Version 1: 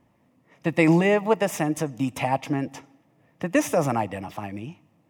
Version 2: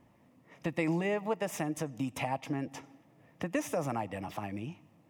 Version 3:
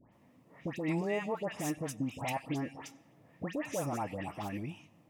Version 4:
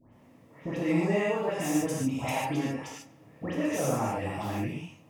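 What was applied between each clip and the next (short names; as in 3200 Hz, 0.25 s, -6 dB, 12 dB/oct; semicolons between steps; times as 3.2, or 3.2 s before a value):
compressor 2:1, threshold -38 dBFS, peak gain reduction 13 dB
limiter -25 dBFS, peak gain reduction 7 dB; dispersion highs, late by 0.125 s, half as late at 1800 Hz
non-linear reverb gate 0.17 s flat, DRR -5.5 dB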